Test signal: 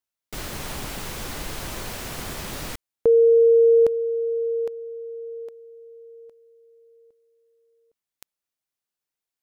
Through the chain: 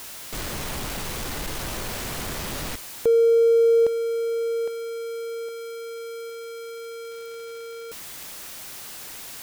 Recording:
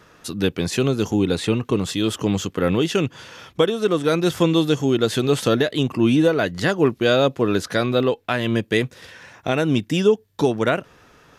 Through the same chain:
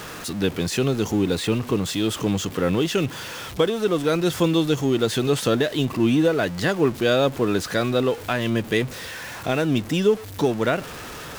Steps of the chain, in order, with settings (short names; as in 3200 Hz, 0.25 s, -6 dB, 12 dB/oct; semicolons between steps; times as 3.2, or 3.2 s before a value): zero-crossing step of -28 dBFS; gain -3 dB